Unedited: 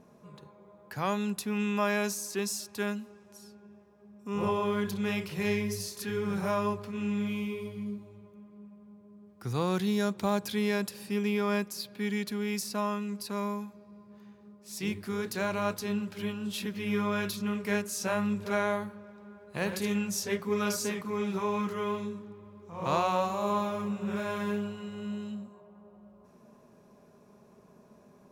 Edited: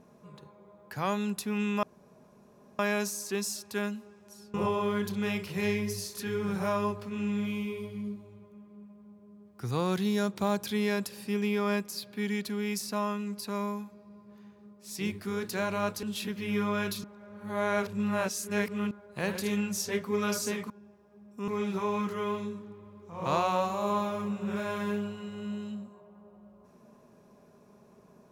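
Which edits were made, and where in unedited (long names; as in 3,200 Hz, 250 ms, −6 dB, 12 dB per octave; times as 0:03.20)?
0:01.83: splice in room tone 0.96 s
0:03.58–0:04.36: move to 0:21.08
0:15.85–0:16.41: remove
0:17.42–0:19.29: reverse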